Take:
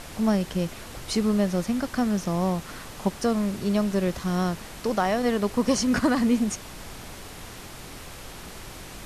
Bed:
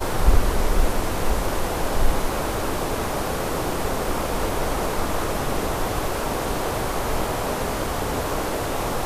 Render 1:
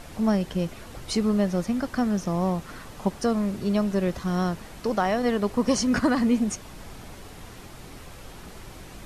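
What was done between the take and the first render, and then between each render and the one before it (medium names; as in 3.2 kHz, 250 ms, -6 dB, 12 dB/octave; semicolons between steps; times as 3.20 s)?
noise reduction 6 dB, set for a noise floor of -42 dBFS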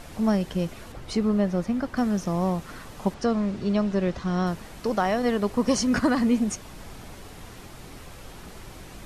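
0.92–1.97 s: treble shelf 4.2 kHz -9.5 dB; 3.14–4.47 s: low-pass 5.7 kHz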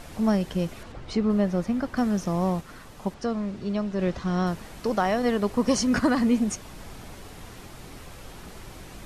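0.83–1.30 s: distance through air 72 m; 2.61–3.99 s: gain -4 dB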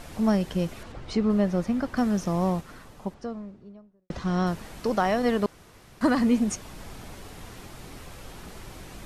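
2.43–4.10 s: studio fade out; 5.46–6.01 s: room tone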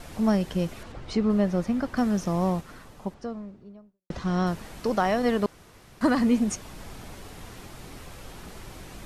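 gate with hold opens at -44 dBFS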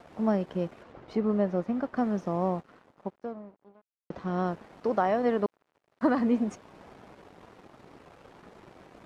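crossover distortion -46.5 dBFS; band-pass filter 560 Hz, Q 0.56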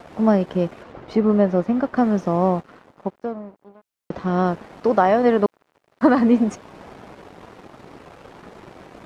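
trim +9.5 dB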